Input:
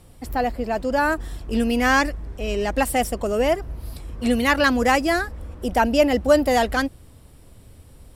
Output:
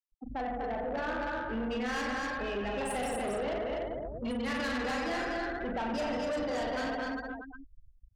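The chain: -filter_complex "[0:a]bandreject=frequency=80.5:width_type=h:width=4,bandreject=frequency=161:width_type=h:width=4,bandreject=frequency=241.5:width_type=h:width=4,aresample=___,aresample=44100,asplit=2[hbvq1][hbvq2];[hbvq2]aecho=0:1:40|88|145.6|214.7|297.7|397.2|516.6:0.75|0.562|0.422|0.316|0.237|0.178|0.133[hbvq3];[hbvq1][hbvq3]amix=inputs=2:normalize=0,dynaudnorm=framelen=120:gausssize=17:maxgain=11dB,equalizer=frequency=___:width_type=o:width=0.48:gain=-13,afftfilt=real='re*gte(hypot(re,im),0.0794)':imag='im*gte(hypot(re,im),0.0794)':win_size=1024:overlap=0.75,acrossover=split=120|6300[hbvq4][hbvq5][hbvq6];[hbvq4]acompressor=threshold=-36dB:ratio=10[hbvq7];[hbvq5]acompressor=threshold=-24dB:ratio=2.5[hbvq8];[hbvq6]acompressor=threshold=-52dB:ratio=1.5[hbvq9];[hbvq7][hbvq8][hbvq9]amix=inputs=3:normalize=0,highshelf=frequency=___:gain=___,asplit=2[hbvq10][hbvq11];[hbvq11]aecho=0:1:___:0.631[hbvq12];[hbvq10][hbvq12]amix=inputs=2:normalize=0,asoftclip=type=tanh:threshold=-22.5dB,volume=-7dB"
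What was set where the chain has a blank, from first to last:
22050, 72, 8100, 7.5, 246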